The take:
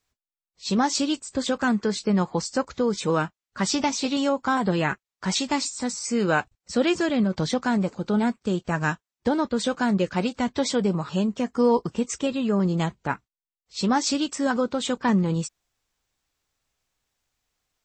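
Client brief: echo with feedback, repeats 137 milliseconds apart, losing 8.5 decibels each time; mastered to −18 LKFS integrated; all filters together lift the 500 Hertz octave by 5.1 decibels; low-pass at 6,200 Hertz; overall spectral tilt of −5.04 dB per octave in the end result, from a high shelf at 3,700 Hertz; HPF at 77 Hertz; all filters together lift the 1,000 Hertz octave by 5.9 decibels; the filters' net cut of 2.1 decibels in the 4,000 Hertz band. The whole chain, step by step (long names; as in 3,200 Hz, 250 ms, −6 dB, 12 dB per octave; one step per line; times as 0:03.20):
high-pass filter 77 Hz
low-pass filter 6,200 Hz
parametric band 500 Hz +4.5 dB
parametric band 1,000 Hz +5.5 dB
high-shelf EQ 3,700 Hz +8.5 dB
parametric band 4,000 Hz −8 dB
repeating echo 137 ms, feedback 38%, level −8.5 dB
level +3.5 dB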